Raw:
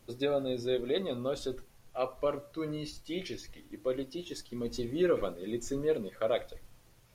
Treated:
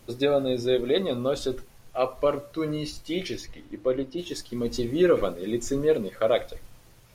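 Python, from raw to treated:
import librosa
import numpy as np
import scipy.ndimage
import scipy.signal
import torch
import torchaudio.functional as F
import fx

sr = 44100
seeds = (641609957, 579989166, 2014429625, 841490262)

y = fx.lowpass(x, sr, hz=fx.line((3.44, 3800.0), (4.17, 1700.0)), slope=6, at=(3.44, 4.17), fade=0.02)
y = F.gain(torch.from_numpy(y), 7.5).numpy()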